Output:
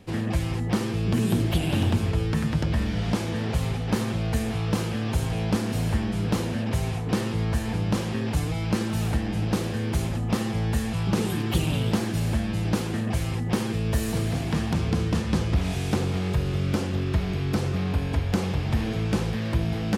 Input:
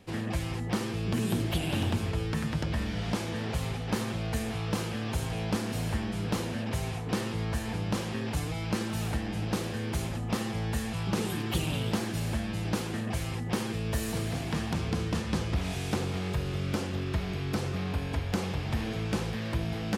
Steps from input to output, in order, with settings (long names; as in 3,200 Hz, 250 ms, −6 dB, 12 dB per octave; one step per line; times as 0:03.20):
low-shelf EQ 410 Hz +4.5 dB
level +2.5 dB